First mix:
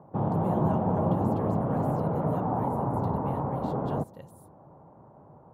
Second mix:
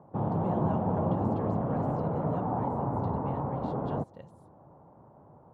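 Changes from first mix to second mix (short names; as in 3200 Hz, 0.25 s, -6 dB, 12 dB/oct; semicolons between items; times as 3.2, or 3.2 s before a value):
speech: add air absorption 100 m; reverb: off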